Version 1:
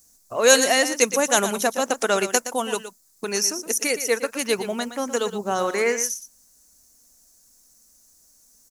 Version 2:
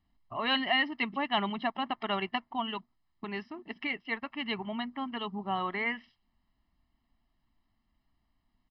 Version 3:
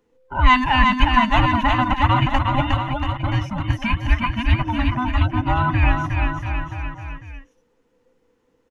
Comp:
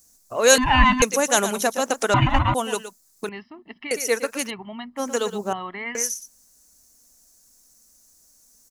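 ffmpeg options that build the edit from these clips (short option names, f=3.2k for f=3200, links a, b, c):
-filter_complex "[2:a]asplit=2[a][b];[1:a]asplit=3[c][d][e];[0:a]asplit=6[f][g][h][i][j][k];[f]atrim=end=0.582[l];[a]atrim=start=0.578:end=1.022[m];[g]atrim=start=1.018:end=2.142[n];[b]atrim=start=2.138:end=2.542[o];[h]atrim=start=2.538:end=3.292[p];[c]atrim=start=3.288:end=3.912[q];[i]atrim=start=3.908:end=4.51[r];[d]atrim=start=4.47:end=5[s];[j]atrim=start=4.96:end=5.532[t];[e]atrim=start=5.528:end=5.952[u];[k]atrim=start=5.948[v];[l][m]acrossfade=d=0.004:c1=hsin:c2=hsin[w];[w][n]acrossfade=d=0.004:c1=hsin:c2=hsin[x];[x][o]acrossfade=d=0.004:c1=hsin:c2=hsin[y];[y][p]acrossfade=d=0.004:c1=hsin:c2=hsin[z];[z][q]acrossfade=d=0.004:c1=hsin:c2=hsin[aa];[aa][r]acrossfade=d=0.004:c1=hsin:c2=hsin[ab];[ab][s]acrossfade=d=0.04:c1=tri:c2=tri[ac];[ac][t]acrossfade=d=0.04:c1=tri:c2=tri[ad];[ad][u]acrossfade=d=0.004:c1=hsin:c2=hsin[ae];[ae][v]acrossfade=d=0.004:c1=hsin:c2=hsin"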